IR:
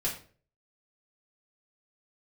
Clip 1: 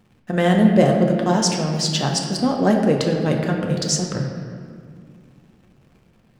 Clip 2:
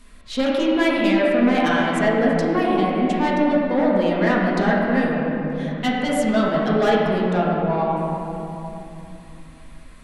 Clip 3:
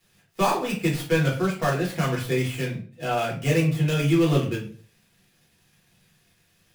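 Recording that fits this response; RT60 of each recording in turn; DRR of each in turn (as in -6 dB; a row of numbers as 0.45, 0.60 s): 3; 2.2, 2.9, 0.45 s; 1.0, -6.0, -5.0 dB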